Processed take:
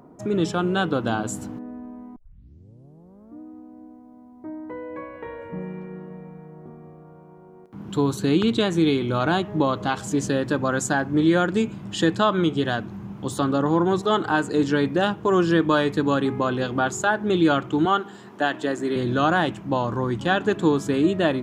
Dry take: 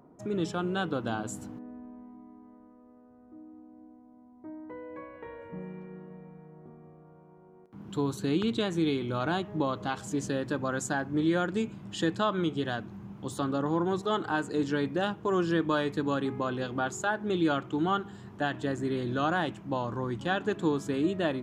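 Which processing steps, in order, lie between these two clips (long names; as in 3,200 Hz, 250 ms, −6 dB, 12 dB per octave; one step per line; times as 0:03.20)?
0:02.16: tape start 1.24 s
0:17.85–0:18.96: high-pass filter 270 Hz 12 dB per octave
level +8 dB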